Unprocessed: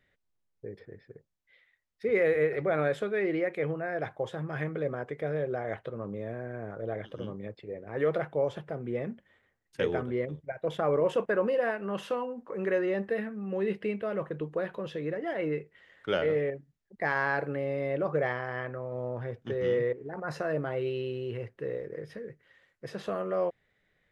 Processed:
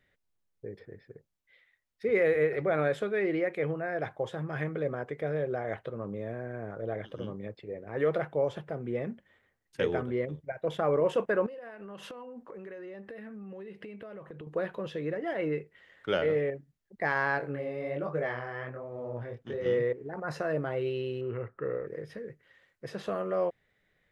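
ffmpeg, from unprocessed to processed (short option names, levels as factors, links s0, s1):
-filter_complex "[0:a]asettb=1/sr,asplit=3[s0][s1][s2];[s0]atrim=end=11.464[s3];[s1]atrim=start=11.46:end=14.47,asetpts=PTS-STARTPTS,afade=t=in:d=0.004:c=qsin,afade=t=out:st=3.006:d=0.004:c=qsin,acompressor=threshold=0.01:ratio=16:attack=3.2:release=140:knee=1:detection=peak[s4];[s2]atrim=start=14.466[s5];[s3][s4]acrossfade=d=0.004:c1=hsin:c2=qsin[s6];[s6][s5]acrossfade=d=0.004:c1=qsin:c2=hsin,asettb=1/sr,asplit=3[s7][s8][s9];[s7]atrim=end=17.384[s10];[s8]atrim=start=17.38:end=19.66,asetpts=PTS-STARTPTS,afade=t=in:d=0.004:c=qsin,afade=t=out:st=2.276:d=0.004:c=qsin,flanger=delay=18.5:depth=7.9:speed=1.3[s11];[s9]atrim=start=19.656[s12];[s10][s11]acrossfade=d=0.004:c1=hsin:c2=qsin[s13];[s13][s12]acrossfade=d=0.004:c1=qsin:c2=hsin,asettb=1/sr,asplit=3[s14][s15][s16];[s14]atrim=end=21.214[s17];[s15]atrim=start=21.21:end=21.87,asetpts=PTS-STARTPTS,afade=t=in:d=0.004:c=qsin,afade=t=out:st=0.656:d=0.004:c=qsin,lowpass=f=1300:t=q:w=13[s18];[s16]atrim=start=21.866[s19];[s17][s18]acrossfade=d=0.004:c1=hsin:c2=qsin[s20];[s20][s19]acrossfade=d=0.004:c1=qsin:c2=hsin"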